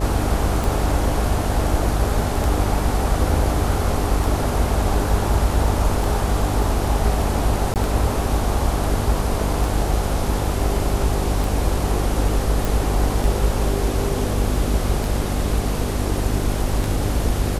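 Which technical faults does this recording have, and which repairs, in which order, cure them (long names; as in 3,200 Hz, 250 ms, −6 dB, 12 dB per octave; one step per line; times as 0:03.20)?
mains buzz 50 Hz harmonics 12 −24 dBFS
scratch tick 33 1/3 rpm
0:07.74–0:07.76: drop-out 18 ms
0:12.65: click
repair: click removal
hum removal 50 Hz, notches 12
repair the gap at 0:07.74, 18 ms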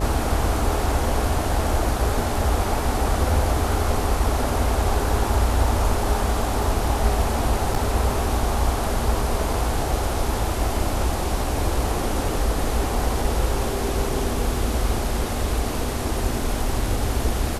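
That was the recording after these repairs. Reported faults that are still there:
none of them is left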